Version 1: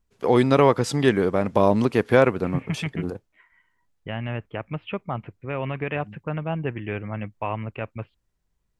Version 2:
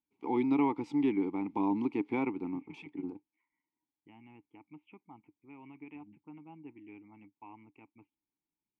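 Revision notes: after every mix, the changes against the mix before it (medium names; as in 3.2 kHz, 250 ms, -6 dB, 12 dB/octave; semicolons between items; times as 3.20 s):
second voice -10.0 dB; master: add vowel filter u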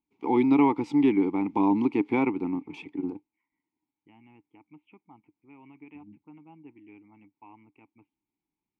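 first voice +7.5 dB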